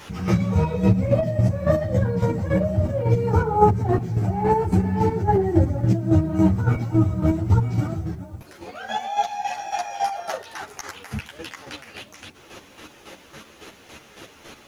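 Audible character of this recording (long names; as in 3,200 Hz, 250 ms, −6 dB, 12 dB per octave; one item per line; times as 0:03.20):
chopped level 3.6 Hz, depth 60%, duty 30%
a quantiser's noise floor 12 bits, dither none
a shimmering, thickened sound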